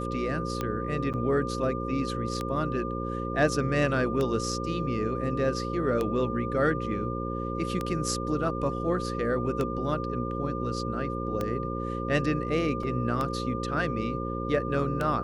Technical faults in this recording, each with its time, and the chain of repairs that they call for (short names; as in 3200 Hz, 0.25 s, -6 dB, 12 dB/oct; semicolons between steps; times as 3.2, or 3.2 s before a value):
buzz 60 Hz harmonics 9 -33 dBFS
tick 33 1/3 rpm -16 dBFS
tone 1200 Hz -35 dBFS
1.13–1.14 gap 7.9 ms
12.83 gap 3.4 ms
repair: de-click; notch 1200 Hz, Q 30; de-hum 60 Hz, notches 9; interpolate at 1.13, 7.9 ms; interpolate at 12.83, 3.4 ms